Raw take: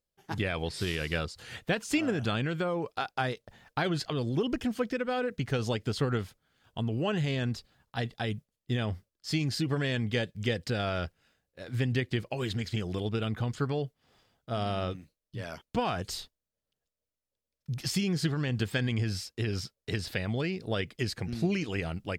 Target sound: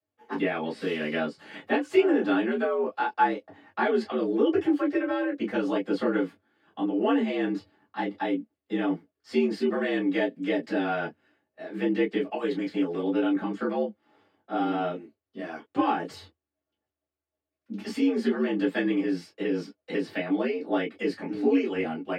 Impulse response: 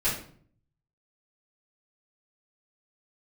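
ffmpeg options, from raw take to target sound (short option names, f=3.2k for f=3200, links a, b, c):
-filter_complex "[0:a]acrossover=split=160 2400:gain=0.0891 1 0.141[a][b][c];[a][b][c]amix=inputs=3:normalize=0[d];[1:a]atrim=start_sample=2205,afade=t=out:st=0.13:d=0.01,atrim=end_sample=6174,asetrate=74970,aresample=44100[e];[d][e]afir=irnorm=-1:irlink=0,afreqshift=75"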